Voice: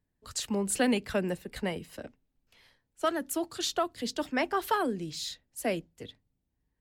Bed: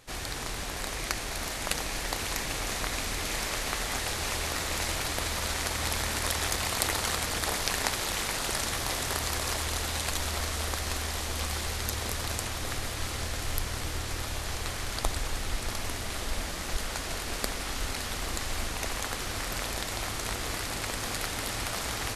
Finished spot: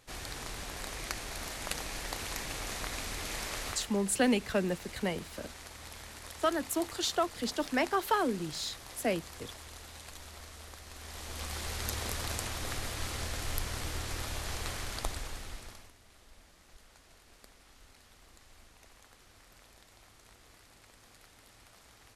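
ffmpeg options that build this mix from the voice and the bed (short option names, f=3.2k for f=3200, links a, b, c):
-filter_complex "[0:a]adelay=3400,volume=-0.5dB[a];[1:a]volume=7.5dB,afade=t=out:st=3.64:d=0.27:silence=0.281838,afade=t=in:st=10.92:d=0.97:silence=0.211349,afade=t=out:st=14.72:d=1.2:silence=0.0794328[b];[a][b]amix=inputs=2:normalize=0"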